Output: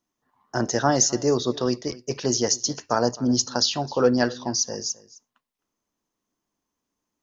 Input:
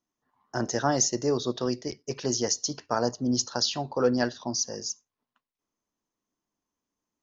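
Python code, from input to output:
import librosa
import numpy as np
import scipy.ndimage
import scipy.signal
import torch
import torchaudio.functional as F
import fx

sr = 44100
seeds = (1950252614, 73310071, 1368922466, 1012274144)

y = x + 10.0 ** (-20.5 / 20.0) * np.pad(x, (int(261 * sr / 1000.0), 0))[:len(x)]
y = F.gain(torch.from_numpy(y), 4.5).numpy()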